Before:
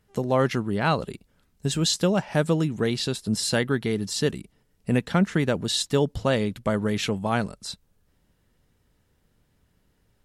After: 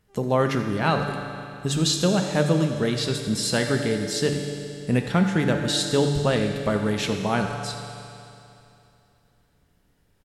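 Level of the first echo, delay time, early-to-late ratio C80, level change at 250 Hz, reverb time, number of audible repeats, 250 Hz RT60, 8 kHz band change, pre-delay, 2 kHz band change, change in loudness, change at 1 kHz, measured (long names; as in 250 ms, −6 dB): −15.0 dB, 87 ms, 5.0 dB, +1.5 dB, 2.8 s, 1, 2.8 s, +1.5 dB, 7 ms, +2.0 dB, +1.0 dB, +1.5 dB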